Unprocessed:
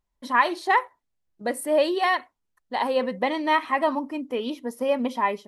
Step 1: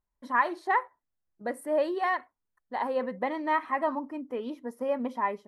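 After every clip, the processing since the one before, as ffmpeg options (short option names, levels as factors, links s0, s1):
-af "highshelf=f=2200:t=q:w=1.5:g=-7.5,volume=0.501"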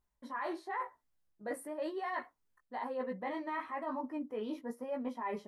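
-af "alimiter=limit=0.0841:level=0:latency=1:release=17,flanger=delay=15.5:depth=3.2:speed=1,areverse,acompressor=threshold=0.00794:ratio=6,areverse,volume=2"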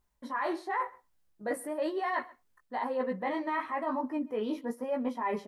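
-af "aecho=1:1:130:0.075,volume=2"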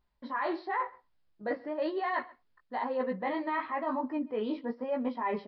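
-af "aresample=11025,aresample=44100"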